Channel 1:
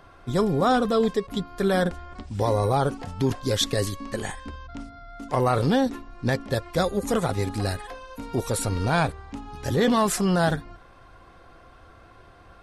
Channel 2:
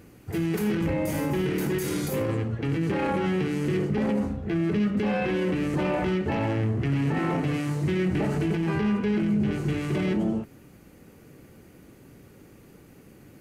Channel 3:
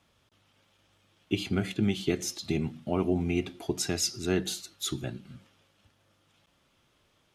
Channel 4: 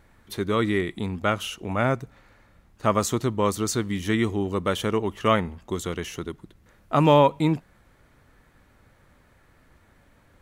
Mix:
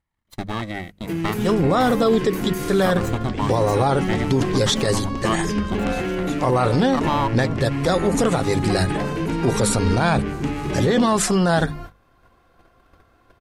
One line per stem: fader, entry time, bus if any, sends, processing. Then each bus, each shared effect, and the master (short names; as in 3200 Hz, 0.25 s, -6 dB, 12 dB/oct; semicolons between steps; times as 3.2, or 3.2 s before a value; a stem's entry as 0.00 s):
-1.0 dB, 1.10 s, no send, LPF 10000 Hz 24 dB/oct; AGC gain up to 11.5 dB
+1.0 dB, 0.75 s, no send, dry
-8.0 dB, 1.45 s, no send, dry
-4.5 dB, 0.00 s, no send, minimum comb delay 1 ms; transient shaper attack +7 dB, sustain -6 dB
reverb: off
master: gate -35 dBFS, range -18 dB; notches 50/100/150/200 Hz; limiter -9.5 dBFS, peak gain reduction 8 dB